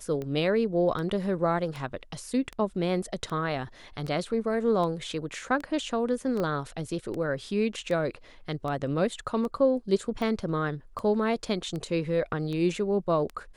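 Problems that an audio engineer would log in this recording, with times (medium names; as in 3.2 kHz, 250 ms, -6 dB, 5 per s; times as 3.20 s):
tick 78 rpm -23 dBFS
6.40 s: pop -19 dBFS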